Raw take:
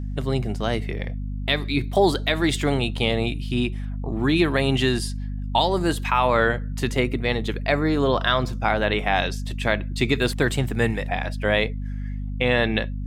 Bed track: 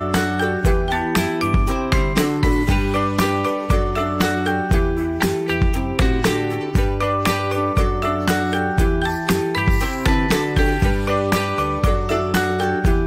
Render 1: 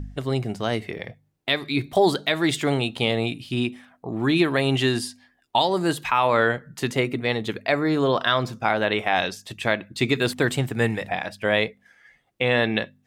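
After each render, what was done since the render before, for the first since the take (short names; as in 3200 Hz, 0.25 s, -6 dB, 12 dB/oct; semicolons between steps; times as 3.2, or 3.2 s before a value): de-hum 50 Hz, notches 5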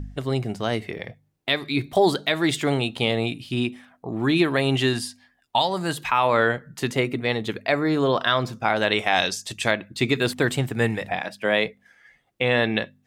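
4.93–5.97 bell 360 Hz -7 dB 0.82 oct; 8.76–9.71 bell 7000 Hz +10.5 dB 1.7 oct; 11.2–11.66 HPF 140 Hz 24 dB/oct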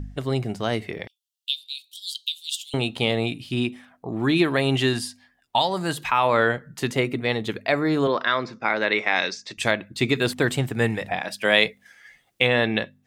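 1.07–2.74 steep high-pass 2800 Hz 96 dB/oct; 8.07–9.58 speaker cabinet 230–5400 Hz, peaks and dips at 720 Hz -7 dB, 2100 Hz +6 dB, 3100 Hz -10 dB; 11.28–12.47 high shelf 2200 Hz +10.5 dB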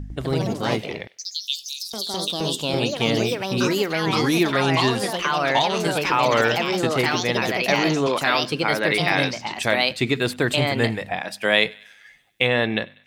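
thinning echo 97 ms, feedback 60%, high-pass 770 Hz, level -23.5 dB; echoes that change speed 0.102 s, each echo +3 st, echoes 3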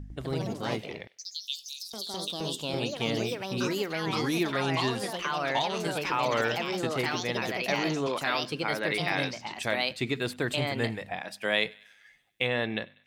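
gain -8.5 dB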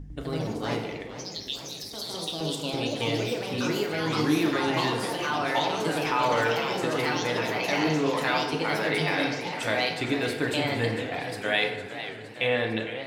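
FDN reverb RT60 1.1 s, low-frequency decay 0.7×, high-frequency decay 0.5×, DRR 1.5 dB; warbling echo 0.457 s, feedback 69%, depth 202 cents, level -12 dB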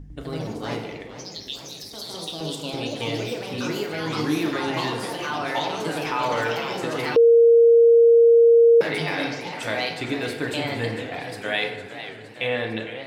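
7.16–8.81 bleep 465 Hz -10 dBFS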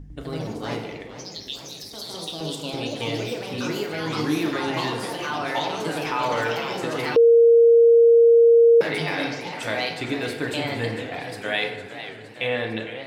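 nothing audible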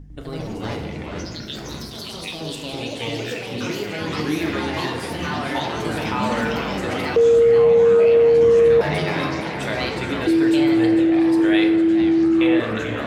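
echoes that change speed 0.142 s, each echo -6 st, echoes 2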